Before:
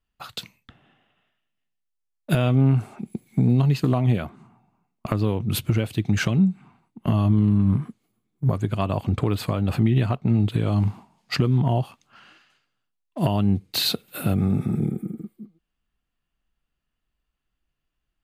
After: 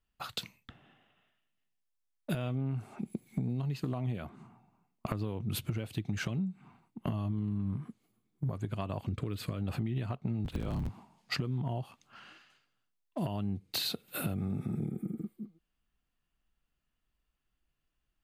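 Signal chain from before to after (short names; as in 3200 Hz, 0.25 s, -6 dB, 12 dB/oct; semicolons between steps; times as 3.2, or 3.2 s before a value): 10.44–10.89 cycle switcher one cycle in 3, inverted; compressor 6:1, threshold -29 dBFS, peak gain reduction 14 dB; 9.06–9.61 bell 830 Hz -11.5 dB 0.68 oct; gain -2.5 dB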